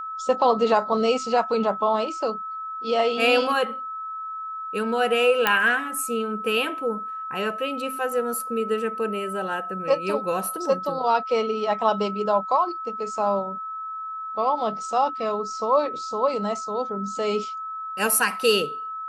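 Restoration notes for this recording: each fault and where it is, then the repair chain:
tone 1300 Hz -30 dBFS
5.47 pop -5 dBFS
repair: de-click; notch 1300 Hz, Q 30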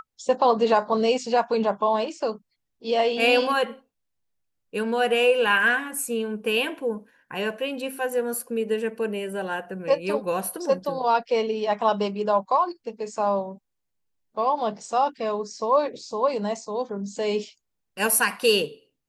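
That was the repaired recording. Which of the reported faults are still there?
none

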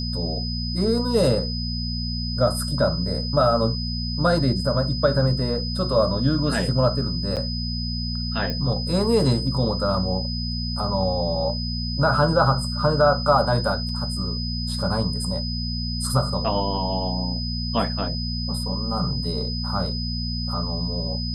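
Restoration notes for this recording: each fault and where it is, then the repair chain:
hum 60 Hz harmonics 4 -28 dBFS
tone 5000 Hz -30 dBFS
7.36–7.37 gap 7.7 ms
8.5 pop -15 dBFS
13.89 gap 3 ms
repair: de-click; notch 5000 Hz, Q 30; de-hum 60 Hz, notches 4; interpolate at 7.36, 7.7 ms; interpolate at 13.89, 3 ms

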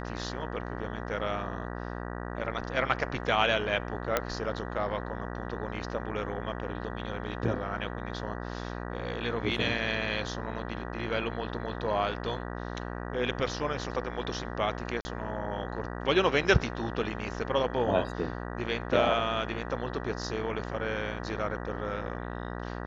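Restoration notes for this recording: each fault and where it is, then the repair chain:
buzz 60 Hz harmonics 32 -37 dBFS
4.17 pop -10 dBFS
15.01–15.05 gap 40 ms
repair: de-click; de-hum 60 Hz, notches 32; interpolate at 15.01, 40 ms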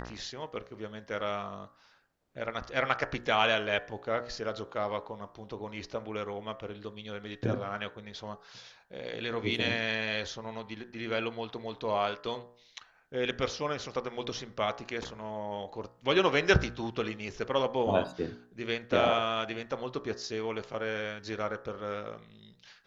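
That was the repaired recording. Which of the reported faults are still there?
none

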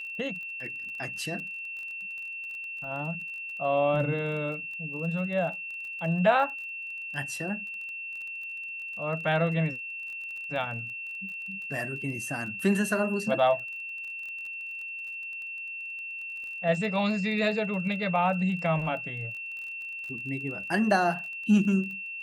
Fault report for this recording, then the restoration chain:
crackle 26/s -38 dBFS
tone 2700 Hz -35 dBFS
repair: de-click; notch 2700 Hz, Q 30

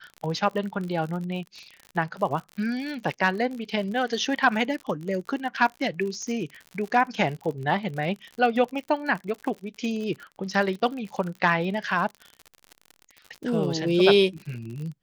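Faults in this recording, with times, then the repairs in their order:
crackle 59/s -33 dBFS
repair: de-click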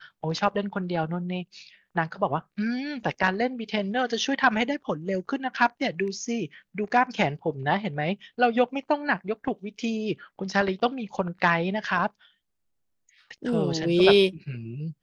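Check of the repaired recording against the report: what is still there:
none

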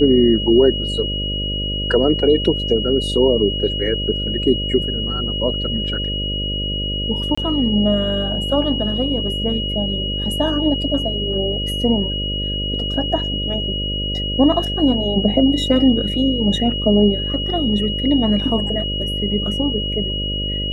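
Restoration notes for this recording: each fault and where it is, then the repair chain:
buzz 50 Hz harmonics 12 -25 dBFS
tone 2900 Hz -23 dBFS
7.35–7.38 gap 25 ms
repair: de-hum 50 Hz, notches 12; notch 2900 Hz, Q 30; interpolate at 7.35, 25 ms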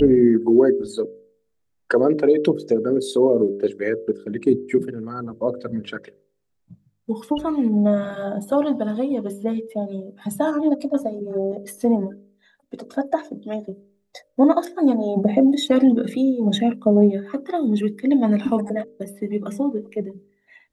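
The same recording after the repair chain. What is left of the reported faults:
none

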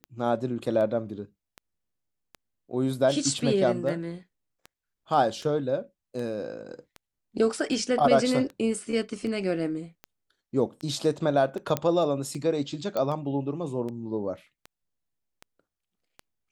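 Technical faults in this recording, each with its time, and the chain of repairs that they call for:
tick 78 rpm -25 dBFS
11.77 pop -11 dBFS
12.97 pop -16 dBFS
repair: de-click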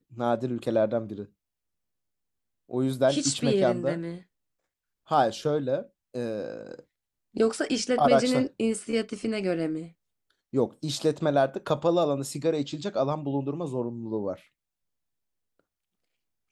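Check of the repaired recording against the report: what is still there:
none

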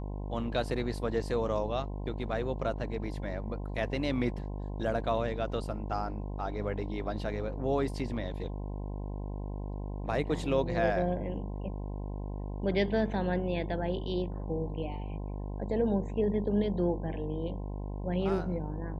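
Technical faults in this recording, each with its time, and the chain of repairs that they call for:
buzz 50 Hz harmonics 21 -37 dBFS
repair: de-hum 50 Hz, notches 21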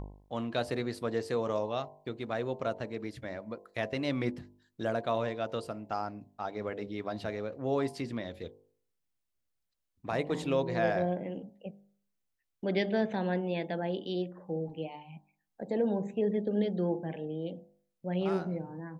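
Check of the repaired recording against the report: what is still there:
none

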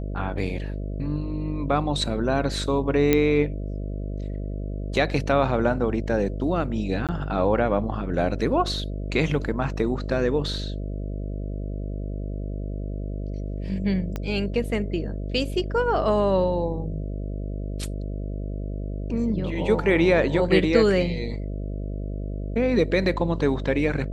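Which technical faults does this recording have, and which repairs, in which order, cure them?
buzz 50 Hz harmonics 13 -30 dBFS
3.13 pop -6 dBFS
7.07–7.09 gap 17 ms
14.16 pop -16 dBFS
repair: de-click; de-hum 50 Hz, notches 13; interpolate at 7.07, 17 ms

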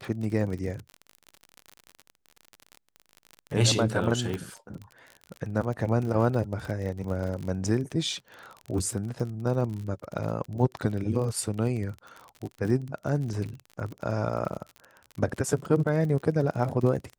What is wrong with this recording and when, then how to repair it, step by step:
crackle 42/s -33 dBFS
4.34 pop -19 dBFS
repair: de-click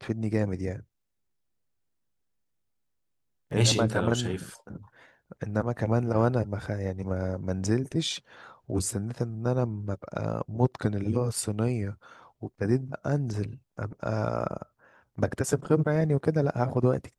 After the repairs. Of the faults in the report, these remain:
none

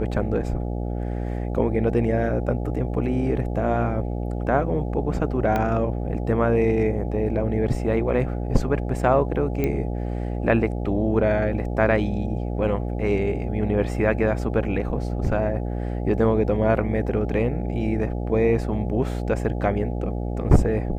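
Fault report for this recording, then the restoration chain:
buzz 60 Hz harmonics 14 -27 dBFS
5.56 pop -12 dBFS
9.64 pop -12 dBFS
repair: de-click; de-hum 60 Hz, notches 14

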